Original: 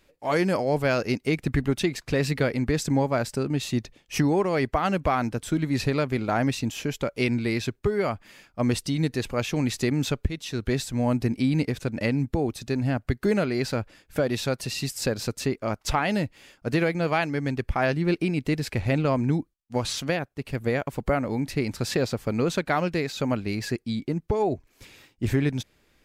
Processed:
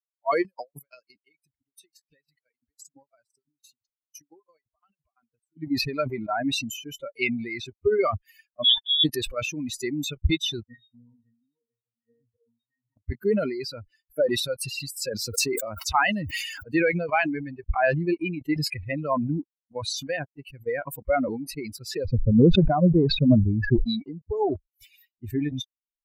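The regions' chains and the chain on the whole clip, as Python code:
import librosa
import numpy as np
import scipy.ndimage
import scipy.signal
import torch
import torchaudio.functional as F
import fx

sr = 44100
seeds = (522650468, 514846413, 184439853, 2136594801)

y = fx.chain(x, sr, fx.high_shelf(hz=2500.0, db=7.5),
    fx.level_steps(step_db=17),
    fx.tremolo_decay(direction='decaying', hz=5.9, depth_db=34), at=(0.42, 5.57))
y = fx.chain(y, sr, fx.highpass(hz=110.0, slope=12),
    fx.freq_invert(carrier_hz=3600), at=(8.64, 9.04))
y = fx.chain(y, sr, fx.low_shelf(hz=280.0, db=-9.5),
    fx.octave_resonator(note='A#', decay_s=0.37), at=(10.63, 12.97))
y = fx.chain(y, sr, fx.highpass(hz=60.0, slope=24),
    fx.sustainer(db_per_s=25.0), at=(15.12, 16.87))
y = fx.chain(y, sr, fx.lowpass(hz=1200.0, slope=6),
    fx.tilt_eq(slope=-3.5),
    fx.sustainer(db_per_s=130.0), at=(22.05, 23.84))
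y = fx.bin_expand(y, sr, power=3.0)
y = fx.dynamic_eq(y, sr, hz=120.0, q=2.7, threshold_db=-48.0, ratio=4.0, max_db=-4)
y = fx.sustainer(y, sr, db_per_s=48.0)
y = y * librosa.db_to_amplitude(7.0)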